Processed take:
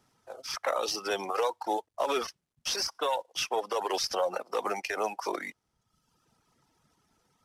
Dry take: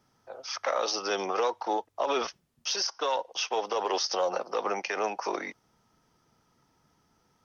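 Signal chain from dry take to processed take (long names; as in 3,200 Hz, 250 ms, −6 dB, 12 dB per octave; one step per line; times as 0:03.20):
variable-slope delta modulation 64 kbit/s
reverb reduction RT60 0.99 s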